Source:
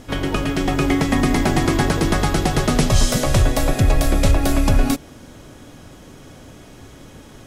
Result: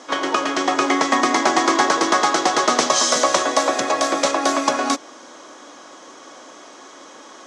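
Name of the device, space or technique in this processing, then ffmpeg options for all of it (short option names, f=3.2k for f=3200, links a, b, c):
phone speaker on a table: -af "highpass=f=340:w=0.5412,highpass=f=340:w=1.3066,equalizer=f=420:t=q:w=4:g=-6,equalizer=f=1.1k:t=q:w=4:g=8,equalizer=f=2.6k:t=q:w=4:g=-5,equalizer=f=6.1k:t=q:w=4:g=5,lowpass=f=7.5k:w=0.5412,lowpass=f=7.5k:w=1.3066,volume=4.5dB"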